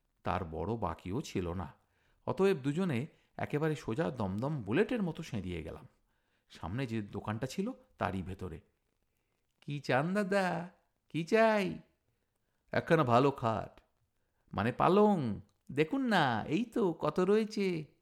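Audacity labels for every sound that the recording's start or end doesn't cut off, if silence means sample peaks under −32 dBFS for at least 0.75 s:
6.630000	8.460000	sound
9.700000	11.720000	sound
12.740000	13.640000	sound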